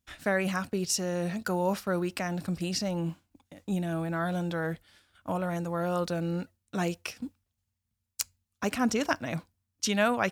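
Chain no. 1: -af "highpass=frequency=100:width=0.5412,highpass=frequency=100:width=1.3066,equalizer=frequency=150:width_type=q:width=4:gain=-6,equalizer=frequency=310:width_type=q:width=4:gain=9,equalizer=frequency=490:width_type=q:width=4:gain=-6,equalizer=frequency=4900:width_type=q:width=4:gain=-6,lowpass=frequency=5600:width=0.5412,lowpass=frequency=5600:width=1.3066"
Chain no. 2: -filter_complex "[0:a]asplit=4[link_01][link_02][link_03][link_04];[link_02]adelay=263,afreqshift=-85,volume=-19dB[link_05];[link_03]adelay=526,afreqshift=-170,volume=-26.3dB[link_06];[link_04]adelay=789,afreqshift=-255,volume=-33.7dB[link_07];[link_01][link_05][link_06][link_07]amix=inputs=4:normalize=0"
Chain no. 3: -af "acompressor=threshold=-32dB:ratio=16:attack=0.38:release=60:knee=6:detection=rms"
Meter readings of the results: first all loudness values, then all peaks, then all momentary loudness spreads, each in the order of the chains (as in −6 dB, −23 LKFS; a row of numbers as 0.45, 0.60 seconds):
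−31.5, −31.0, −40.0 LKFS; −10.5, −5.0, −25.5 dBFS; 13, 10, 11 LU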